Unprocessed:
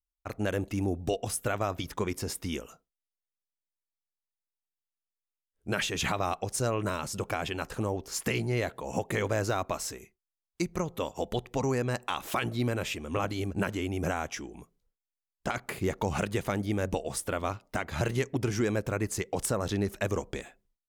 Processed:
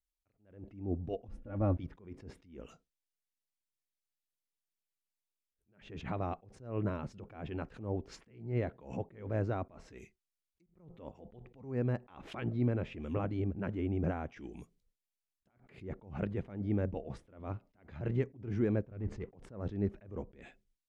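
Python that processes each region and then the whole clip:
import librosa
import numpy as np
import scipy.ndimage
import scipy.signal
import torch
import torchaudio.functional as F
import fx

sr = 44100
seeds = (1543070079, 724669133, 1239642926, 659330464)

y = fx.chain(x, sr, fx.tilt_eq(slope=-3.0),
    fx.comb(ms=3.6, depth=0.75), at=(1.28, 1.77))
y = fx.chain(y, sr, fx.lowpass(hz=5900.0, slope=12),
    fx.low_shelf(hz=100.0, db=10.5),
    fx.leveller(passes=2), at=(18.91, 19.34))
y = fx.env_lowpass_down(y, sr, base_hz=1200.0, full_db=-30.0)
y = fx.curve_eq(y, sr, hz=(240.0, 1100.0, 2300.0), db=(0, -9, -1))
y = fx.attack_slew(y, sr, db_per_s=120.0)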